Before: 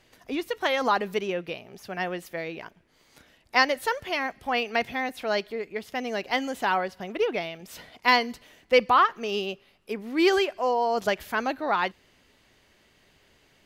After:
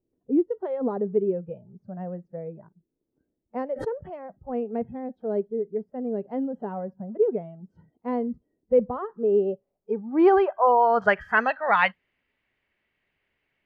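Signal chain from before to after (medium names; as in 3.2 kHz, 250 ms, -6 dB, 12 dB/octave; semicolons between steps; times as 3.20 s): spectral noise reduction 20 dB; low-pass sweep 350 Hz -> 2.3 kHz, 9.00–11.58 s; 3.73–4.24 s: swell ahead of each attack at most 89 dB/s; trim +2.5 dB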